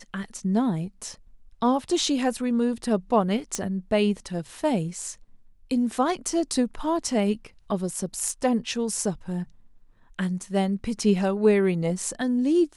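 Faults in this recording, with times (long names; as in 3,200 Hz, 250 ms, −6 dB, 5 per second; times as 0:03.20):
0:03.55: click −13 dBFS
0:08.29: drop-out 2.2 ms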